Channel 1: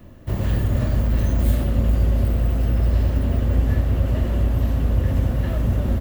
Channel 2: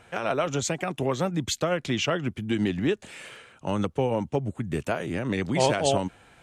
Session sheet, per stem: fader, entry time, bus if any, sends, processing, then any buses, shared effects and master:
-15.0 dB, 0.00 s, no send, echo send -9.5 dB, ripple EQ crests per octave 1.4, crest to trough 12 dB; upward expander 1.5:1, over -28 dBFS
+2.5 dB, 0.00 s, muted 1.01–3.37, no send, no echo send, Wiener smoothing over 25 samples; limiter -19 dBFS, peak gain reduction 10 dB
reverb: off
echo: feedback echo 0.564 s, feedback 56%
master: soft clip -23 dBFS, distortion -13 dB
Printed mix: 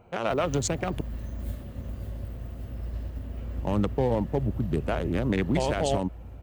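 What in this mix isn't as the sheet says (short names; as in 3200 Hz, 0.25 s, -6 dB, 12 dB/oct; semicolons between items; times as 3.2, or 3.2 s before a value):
stem 1: missing ripple EQ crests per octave 1.4, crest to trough 12 dB; master: missing soft clip -23 dBFS, distortion -13 dB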